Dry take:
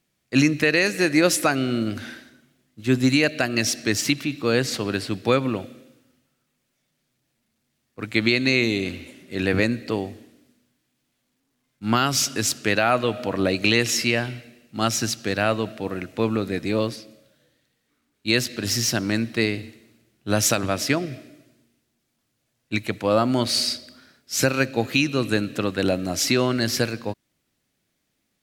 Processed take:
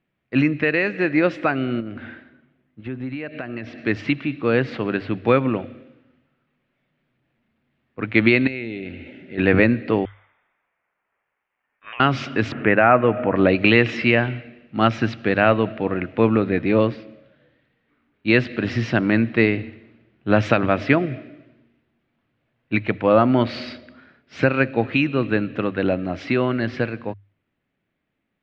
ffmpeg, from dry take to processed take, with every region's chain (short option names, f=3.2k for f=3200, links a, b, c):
-filter_complex "[0:a]asettb=1/sr,asplit=3[a][b][c];[a]atrim=end=1.804[d];[b]atrim=start=1.8:end=3.78,asetpts=PTS-STARTPTS,afade=t=in:d=0.004:c=qsin,afade=t=out:st=1.976:d=0.004:c=qsin,aemphasis=mode=reproduction:type=50fm,acompressor=threshold=-28dB:ratio=4:attack=3.2:release=140:knee=1:detection=peak[e];[c]atrim=start=3.776[f];[d][e]acrossfade=d=0.004:c1=hsin:c2=qsin[g];[g][f]acrossfade=d=0.004:c1=qsin:c2=hsin,asettb=1/sr,asplit=3[h][i][j];[h]atrim=end=8.474[k];[i]atrim=start=8.47:end=9.38,asetpts=PTS-STARTPTS,afade=t=in:d=0.004:c=qsin,afade=t=out:st=0.906:d=0.004:c=qsin,acompressor=threshold=-41dB:ratio=2:attack=3.2:release=140:knee=1:detection=peak,asuperstop=centerf=1100:order=4:qfactor=2.9[l];[j]atrim=start=9.376[m];[k][l]acrossfade=d=0.004:c1=hsin:c2=qsin[n];[n][m]acrossfade=d=0.004:c1=qsin:c2=hsin,asettb=1/sr,asplit=3[o][p][q];[o]atrim=end=10.054[r];[p]atrim=start=10.05:end=12,asetpts=PTS-STARTPTS,afade=t=in:d=0.004:c=qsin,afade=t=out:st=1.946:d=0.004:c=qsin,highpass=1.5k,lowpass=f=3.3k:t=q:w=0.5098,lowpass=f=3.3k:t=q:w=0.6013,lowpass=f=3.3k:t=q:w=0.9,lowpass=f=3.3k:t=q:w=2.563,afreqshift=-3900,acompressor=threshold=-35dB:ratio=16:attack=3.2:release=140:knee=1:detection=peak[s];[q]atrim=start=11.996[t];[r][s]acrossfade=d=0.004:c1=hsin:c2=qsin[u];[u][t]acrossfade=d=0.004:c1=qsin:c2=hsin,asettb=1/sr,asplit=3[v][w][x];[v]atrim=end=12.524[y];[w]atrim=start=12.52:end=13.36,asetpts=PTS-STARTPTS,afade=t=in:d=0.004:c=qsin,afade=t=out:st=0.836:d=0.004:c=qsin,lowpass=f=2.3k:w=0.5412,lowpass=f=2.3k:w=1.3066,acompressor=mode=upward:threshold=-25dB:ratio=2.5:attack=3.2:release=140:knee=2.83:detection=peak[z];[x]atrim=start=13.356[aa];[y][z]acrossfade=d=0.004:c1=hsin:c2=qsin[ab];[ab][aa]acrossfade=d=0.004:c1=qsin:c2=hsin,lowpass=f=2.7k:w=0.5412,lowpass=f=2.7k:w=1.3066,bandreject=f=50:t=h:w=6,bandreject=f=100:t=h:w=6,dynaudnorm=f=800:g=13:m=11.5dB"